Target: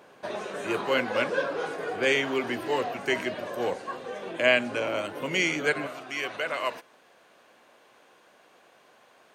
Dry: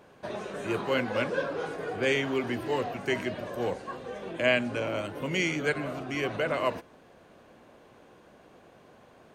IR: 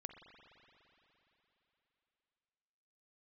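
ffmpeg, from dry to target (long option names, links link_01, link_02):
-af "asetnsamples=nb_out_samples=441:pad=0,asendcmd='5.87 highpass f 1300',highpass=frequency=380:poles=1,volume=4dB"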